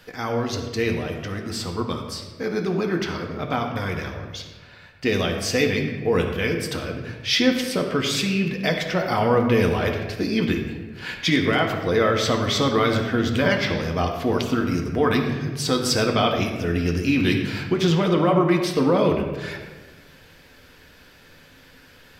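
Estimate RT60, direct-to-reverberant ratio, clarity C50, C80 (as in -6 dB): 1.3 s, 1.5 dB, 5.0 dB, 7.0 dB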